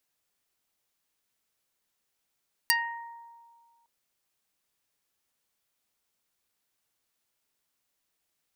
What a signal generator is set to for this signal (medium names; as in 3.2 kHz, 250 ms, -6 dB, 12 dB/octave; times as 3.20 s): plucked string A#5, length 1.16 s, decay 1.87 s, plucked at 0.26, dark